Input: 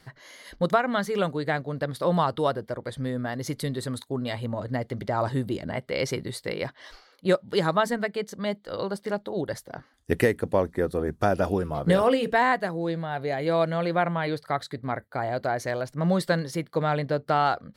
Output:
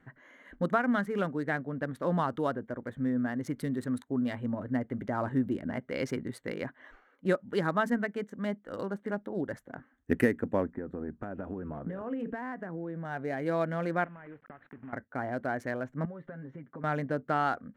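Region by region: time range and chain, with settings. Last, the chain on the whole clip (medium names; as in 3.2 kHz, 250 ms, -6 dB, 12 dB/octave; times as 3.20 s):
10.71–13.05 s: low-pass 1.8 kHz 6 dB/octave + compression 12:1, threshold -28 dBFS
14.04–14.93 s: block-companded coder 3-bit + low-pass 2.8 kHz 24 dB/octave + compression 10:1, threshold -39 dBFS
16.05–16.84 s: comb 7.4 ms, depth 64% + compression 5:1, threshold -35 dBFS + distance through air 360 m
whole clip: local Wiener filter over 9 samples; fifteen-band graphic EQ 250 Hz +11 dB, 1.6 kHz +7 dB, 4 kHz -6 dB; trim -8 dB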